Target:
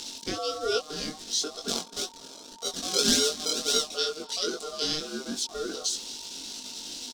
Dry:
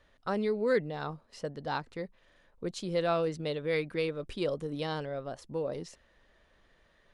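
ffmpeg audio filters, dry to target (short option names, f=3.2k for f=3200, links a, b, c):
-filter_complex "[0:a]aeval=exprs='val(0)+0.5*0.00891*sgn(val(0))':c=same,asettb=1/sr,asplit=3[a][b][c];[a]atrim=end=1.684[d];[b]atrim=start=1.68:end=3.87,asetpts=PTS-STARTPTS,afade=t=in:d=0.004:c=qsin,afade=t=out:st=2.186:d=0.004:c=qsin,acrusher=samples=33:mix=1:aa=0.000001:lfo=1:lforange=33:lforate=1.8[e];[c]atrim=start=3.866[f];[d][e]acrossfade=d=0.004:c1=hsin:c2=qsin[g];[g][f]acrossfade=d=0.004:c1=qsin:c2=hsin,equalizer=f=4.6k:w=1.9:g=14,aecho=1:1:4.2:0.31,asplit=2[h][i];[i]adelay=244.9,volume=-22dB,highshelf=f=4k:g=-5.51[j];[h][j]amix=inputs=2:normalize=0,aeval=exprs='val(0)*sin(2*PI*920*n/s)':c=same,equalizer=f=125:t=o:w=1:g=-6,equalizer=f=250:t=o:w=1:g=10,equalizer=f=1k:t=o:w=1:g=-10,equalizer=f=2k:t=o:w=1:g=-8,equalizer=f=4k:t=o:w=1:g=8,equalizer=f=8k:t=o:w=1:g=11,acompressor=mode=upward:threshold=-41dB:ratio=2.5,flanger=delay=20:depth=2.6:speed=2.4,volume=4.5dB" -ar 48000 -c:a libvorbis -b:a 128k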